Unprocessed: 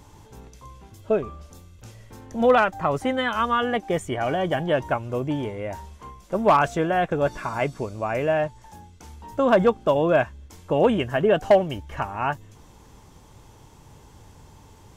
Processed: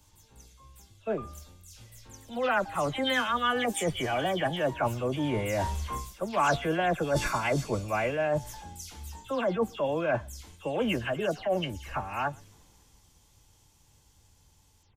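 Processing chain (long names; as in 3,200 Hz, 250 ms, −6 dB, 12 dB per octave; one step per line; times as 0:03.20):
every frequency bin delayed by itself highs early, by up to 166 ms
source passing by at 0:06.45, 7 m/s, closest 9.9 metres
reversed playback
downward compressor 8 to 1, threshold −34 dBFS, peak gain reduction 21.5 dB
reversed playback
high-shelf EQ 2,200 Hz +9.5 dB
slap from a distant wall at 21 metres, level −27 dB
multiband upward and downward expander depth 40%
level +8 dB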